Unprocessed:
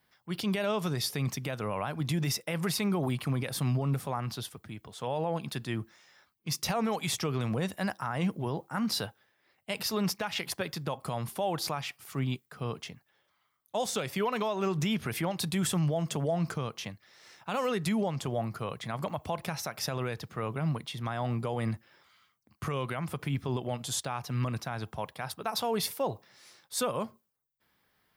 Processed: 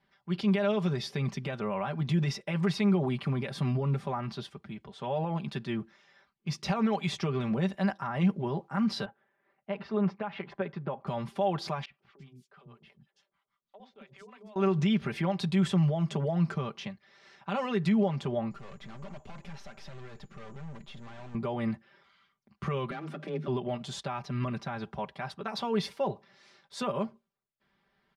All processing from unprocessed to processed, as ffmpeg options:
-filter_complex "[0:a]asettb=1/sr,asplit=3[a][b][c];[a]atrim=end=9.054[d];[b]atrim=start=9.05:end=11.07,asetpts=PTS-STARTPTS,afade=t=in:d=0.004:c=qsin,afade=t=out:st=2.016:d=0.004:c=qsin,lowpass=1.7k,lowshelf=f=110:g=-9.5[e];[c]atrim=start=11.066[f];[d][e]acrossfade=d=0.004:c1=hsin:c2=qsin[g];[g][f]acrossfade=d=0.004:c1=qsin:c2=hsin,asettb=1/sr,asplit=3[h][i][j];[h]atrim=end=11.854[k];[i]atrim=start=11.85:end=14.56,asetpts=PTS-STARTPTS,afade=t=in:d=0.004:c=qsin,afade=t=out:st=2.706:d=0.004:c=qsin,acrossover=split=530[l][m];[l]aeval=exprs='val(0)*(1-1/2+1/2*cos(2*PI*6.2*n/s))':c=same[n];[m]aeval=exprs='val(0)*(1-1/2-1/2*cos(2*PI*6.2*n/s))':c=same[o];[n][o]amix=inputs=2:normalize=0,acompressor=threshold=-53dB:ratio=3:attack=3.2:release=140:knee=1:detection=peak,acrossover=split=340|4300[p][q][r];[p]adelay=50[s];[r]adelay=330[t];[s][q][t]amix=inputs=3:normalize=0,atrim=end_sample=119511[u];[j]atrim=start=14.556[v];[k][u]acrossfade=d=0.004:c1=hsin:c2=qsin[w];[w][v]acrossfade=d=0.004:c1=qsin:c2=hsin,asettb=1/sr,asplit=3[x][y][z];[x]atrim=end=18.514[aa];[y]atrim=start=18.51:end=21.35,asetpts=PTS-STARTPTS,afade=t=in:d=0.004:c=qsin,afade=t=out:st=2.836:d=0.004:c=qsin,aeval=exprs='val(0)+0.00251*sin(2*PI*7000*n/s)':c=same,aeval=exprs='(tanh(158*val(0)+0.65)-tanh(0.65))/158':c=same[ab];[z]atrim=start=21.346[ac];[aa][ab]acrossfade=d=0.004:c1=hsin:c2=qsin[ad];[ad][ac]acrossfade=d=0.004:c1=qsin:c2=hsin,asettb=1/sr,asplit=3[ae][af][ag];[ae]atrim=end=22.914[ah];[af]atrim=start=22.91:end=23.48,asetpts=PTS-STARTPTS,afade=t=in:d=0.004:c=qsin,afade=t=out:st=0.566:d=0.004:c=qsin,aeval=exprs='clip(val(0),-1,0.00841)':c=same,afreqshift=150,bandreject=f=910:w=8.2[ai];[ag]atrim=start=23.476[aj];[ah][ai]acrossfade=d=0.004:c1=hsin:c2=qsin[ak];[ak][aj]acrossfade=d=0.004:c1=qsin:c2=hsin,lowpass=3.9k,lowshelf=f=470:g=3,aecho=1:1:5.1:0.76,volume=-2.5dB"

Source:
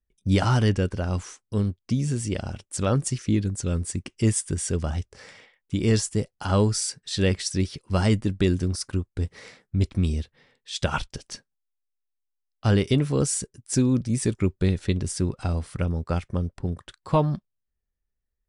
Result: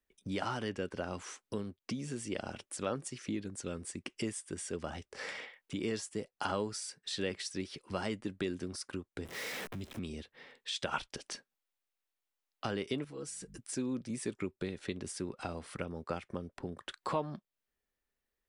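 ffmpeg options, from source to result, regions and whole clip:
-filter_complex "[0:a]asettb=1/sr,asplit=3[a][b][c];[a]atrim=end=9.254[d];[b]atrim=start=9.25:end=9.99,asetpts=PTS-STARTPTS,afade=t=in:d=0.004:c=qsin,afade=t=out:st=0.736:d=0.004:c=qsin,aeval=exprs='val(0)+0.5*0.02*sgn(val(0))':c=same,acrossover=split=250|3000[e][f][g];[f]acompressor=threshold=-43dB:ratio=2:attack=3.2:release=140:knee=2.83:detection=peak[h];[e][h][g]amix=inputs=3:normalize=0,bandreject=f=4.4k:w=14[i];[c]atrim=start=9.986[j];[d][i]acrossfade=d=0.004:c1=hsin:c2=qsin[k];[k][j]acrossfade=d=0.004:c1=qsin:c2=hsin,asettb=1/sr,asplit=3[l][m][n];[l]atrim=end=13.044[o];[m]atrim=start=13.04:end=13.58,asetpts=PTS-STARTPTS,afade=t=in:d=0.004:c=qsin,afade=t=out:st=0.536:d=0.004:c=qsin,aeval=exprs='val(0)+0.00708*(sin(2*PI*50*n/s)+sin(2*PI*2*50*n/s)/2+sin(2*PI*3*50*n/s)/3+sin(2*PI*4*50*n/s)/4+sin(2*PI*5*50*n/s)/5)':c=same,aecho=1:1:6.2:0.92,atrim=end_sample=23814,acompressor=threshold=-33dB:ratio=12:attack=3.2:release=140:knee=1:detection=peak[p];[n]atrim=start=13.576[q];[o][p]acrossfade=d=0.004:c1=hsin:c2=qsin[r];[r][q]acrossfade=d=0.004:c1=qsin:c2=hsin,highshelf=f=4.3k:g=10.5,acompressor=threshold=-37dB:ratio=4,acrossover=split=220 3400:gain=0.141 1 0.224[s][t][u];[s][t][u]amix=inputs=3:normalize=0,volume=5.5dB"

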